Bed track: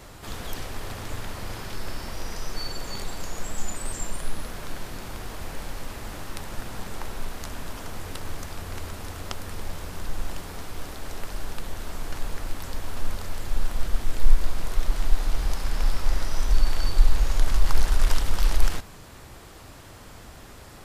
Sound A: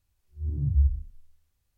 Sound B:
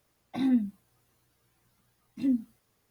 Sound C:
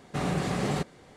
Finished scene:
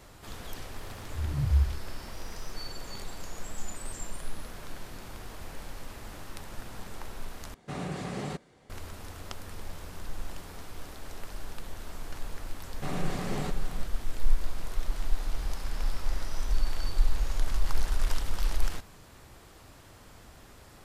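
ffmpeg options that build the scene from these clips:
-filter_complex "[3:a]asplit=2[s0][s1];[0:a]volume=0.447[s2];[1:a]acompressor=mode=upward:threshold=0.01:ratio=2.5:attack=3.2:release=140:knee=2.83:detection=peak[s3];[s1]aecho=1:1:540:0.282[s4];[s2]asplit=2[s5][s6];[s5]atrim=end=7.544[s7];[s0]atrim=end=1.16,asetpts=PTS-STARTPTS,volume=0.447[s8];[s6]atrim=start=8.696[s9];[s3]atrim=end=1.77,asetpts=PTS-STARTPTS,volume=0.794,afade=t=in:d=0.004:c=hsin,afade=t=out:st=1.766:d=0.004:c=hsin,adelay=760[s10];[s4]atrim=end=1.16,asetpts=PTS-STARTPTS,volume=0.531,afade=t=in:d=0.004:c=hsin,afade=t=out:st=1.156:d=0.004:c=hsin,adelay=559188S[s11];[s7][s8]acrossfade=d=0.004:c1=hsin:c2=hsin[s12];[s12][s9]acrossfade=d=0.004:c1=hsin:c2=hsin[s13];[s13][s10][s11]amix=inputs=3:normalize=0"

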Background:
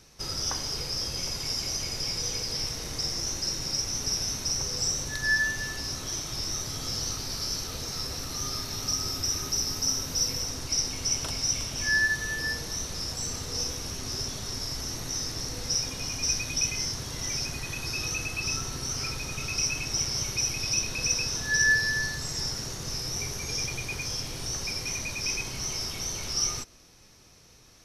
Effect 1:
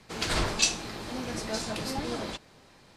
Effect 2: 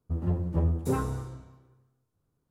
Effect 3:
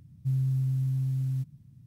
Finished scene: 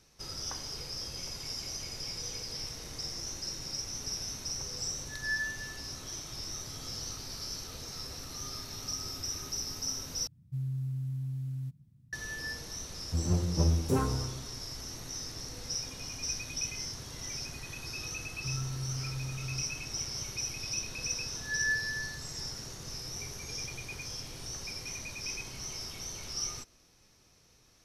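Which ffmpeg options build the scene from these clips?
-filter_complex "[3:a]asplit=2[s0][s1];[0:a]volume=0.398,asplit=2[s2][s3];[s2]atrim=end=10.274[s4];[s0]atrim=end=1.86,asetpts=PTS-STARTPTS,volume=0.422[s5];[s3]atrim=start=12.126[s6];[2:a]atrim=end=2.5,asetpts=PTS-STARTPTS,volume=0.944,afade=t=in:d=0.004:c=hsin,afade=t=out:st=2.496:d=0.004:c=hsin,adelay=13030[s7];[s1]atrim=end=1.86,asetpts=PTS-STARTPTS,volume=0.316,afade=t=in:d=0.004:c=hsin,afade=t=out:st=1.856:d=0.004:c=hsin,adelay=18190[s8];[s4][s5]acrossfade=d=0.004:c1=hsin:c2=hsin[s9];[s9][s6]acrossfade=d=0.004:c1=hsin:c2=hsin[s10];[s10][s7][s8]amix=inputs=3:normalize=0"

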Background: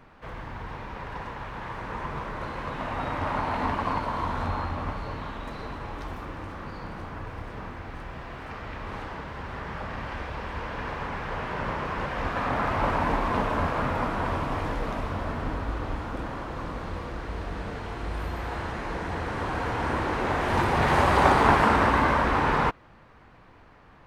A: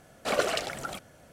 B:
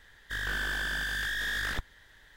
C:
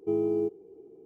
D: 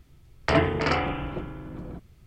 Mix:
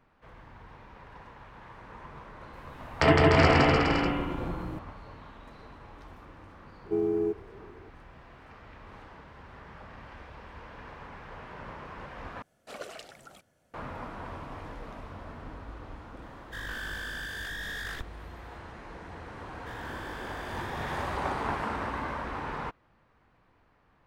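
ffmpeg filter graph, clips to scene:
-filter_complex "[2:a]asplit=2[s0][s1];[0:a]volume=0.237[s2];[4:a]aecho=1:1:160|296|411.6|509.9|593.4:0.794|0.631|0.501|0.398|0.316[s3];[s2]asplit=2[s4][s5];[s4]atrim=end=12.424[s6];[1:a]atrim=end=1.32,asetpts=PTS-STARTPTS,volume=0.178[s7];[s5]atrim=start=13.736[s8];[s3]atrim=end=2.26,asetpts=PTS-STARTPTS,afade=t=in:d=0.004:c=hsin,afade=t=out:st=2.256:d=0.004:c=hsin,adelay=2530[s9];[3:a]atrim=end=1.05,asetpts=PTS-STARTPTS,volume=0.944,afade=t=in:d=0.004:c=hsin,afade=t=out:st=1.046:d=0.004:c=hsin,adelay=6840[s10];[s0]atrim=end=2.36,asetpts=PTS-STARTPTS,volume=0.531,afade=t=in:d=0.004:c=hsin,afade=t=out:st=2.356:d=0.004:c=hsin,adelay=16220[s11];[s1]atrim=end=2.36,asetpts=PTS-STARTPTS,volume=0.224,afade=t=in:d=0.004:c=hsin,afade=t=out:st=2.356:d=0.004:c=hsin,adelay=19360[s12];[s6][s7]acrossfade=d=0.004:c1=hsin:c2=hsin[s13];[s13][s8]acrossfade=d=0.004:c1=hsin:c2=hsin[s14];[s14][s9][s10][s11][s12]amix=inputs=5:normalize=0"

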